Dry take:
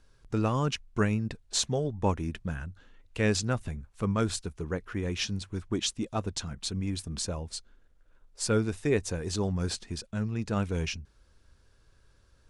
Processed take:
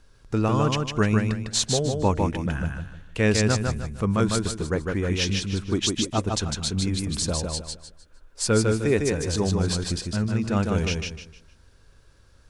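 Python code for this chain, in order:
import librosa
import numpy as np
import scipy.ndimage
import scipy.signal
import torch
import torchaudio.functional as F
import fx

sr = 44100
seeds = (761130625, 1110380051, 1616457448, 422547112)

p1 = fx.rider(x, sr, range_db=3, speed_s=0.5)
p2 = x + F.gain(torch.from_numpy(p1), -2.0).numpy()
y = fx.echo_feedback(p2, sr, ms=153, feedback_pct=31, wet_db=-3.5)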